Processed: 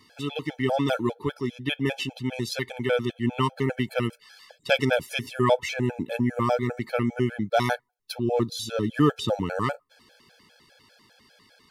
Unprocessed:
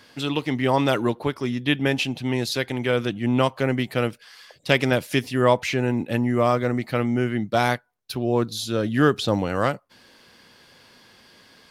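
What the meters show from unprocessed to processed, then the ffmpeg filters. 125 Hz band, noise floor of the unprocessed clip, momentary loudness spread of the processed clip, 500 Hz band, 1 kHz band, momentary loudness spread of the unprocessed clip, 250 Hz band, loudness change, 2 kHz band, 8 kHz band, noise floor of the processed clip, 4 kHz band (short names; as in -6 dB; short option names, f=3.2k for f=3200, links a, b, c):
-4.0 dB, -55 dBFS, 8 LU, -3.5 dB, -3.5 dB, 6 LU, -4.0 dB, -3.5 dB, -4.0 dB, -3.5 dB, -60 dBFS, -4.0 dB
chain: -af "dynaudnorm=f=300:g=17:m=5dB,afftfilt=real='re*gt(sin(2*PI*5*pts/sr)*(1-2*mod(floor(b*sr/1024/440),2)),0)':imag='im*gt(sin(2*PI*5*pts/sr)*(1-2*mod(floor(b*sr/1024/440),2)),0)':win_size=1024:overlap=0.75,volume=-2dB"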